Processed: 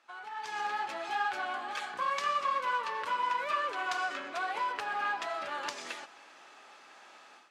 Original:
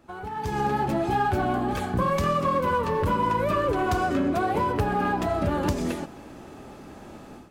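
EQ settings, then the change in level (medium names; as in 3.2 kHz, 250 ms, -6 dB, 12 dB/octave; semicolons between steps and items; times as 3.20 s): high-pass 1.3 kHz 12 dB/octave; low-pass 6 kHz 12 dB/octave; 0.0 dB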